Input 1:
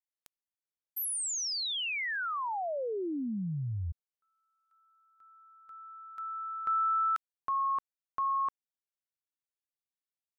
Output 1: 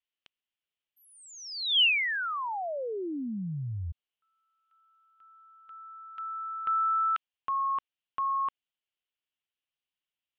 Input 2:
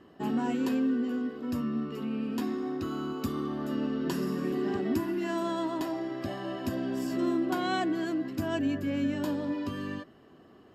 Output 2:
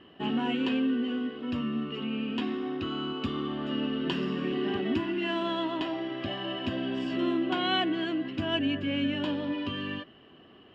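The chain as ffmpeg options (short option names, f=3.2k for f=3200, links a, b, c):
-af "lowpass=f=3k:t=q:w=4.6"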